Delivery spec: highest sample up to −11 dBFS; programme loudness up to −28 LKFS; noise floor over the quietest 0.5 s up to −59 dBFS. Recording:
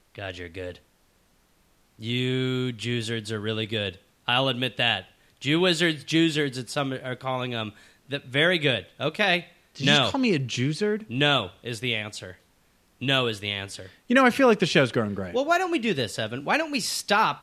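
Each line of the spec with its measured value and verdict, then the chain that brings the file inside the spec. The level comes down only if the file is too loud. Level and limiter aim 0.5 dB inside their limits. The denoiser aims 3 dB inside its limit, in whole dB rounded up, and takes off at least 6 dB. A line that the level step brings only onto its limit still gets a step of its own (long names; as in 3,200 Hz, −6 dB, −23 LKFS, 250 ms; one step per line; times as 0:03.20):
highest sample −6.0 dBFS: out of spec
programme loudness −24.5 LKFS: out of spec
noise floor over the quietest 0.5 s −64 dBFS: in spec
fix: level −4 dB
brickwall limiter −11.5 dBFS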